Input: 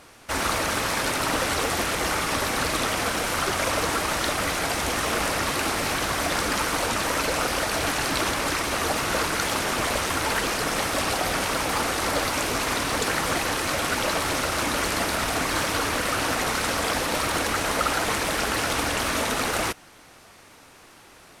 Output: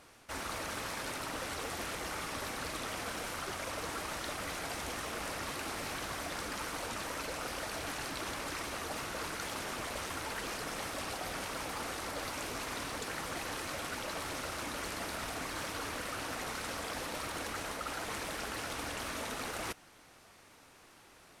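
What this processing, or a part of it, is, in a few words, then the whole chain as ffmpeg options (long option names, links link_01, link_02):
compression on the reversed sound: -af "areverse,acompressor=threshold=-27dB:ratio=6,areverse,volume=-9dB"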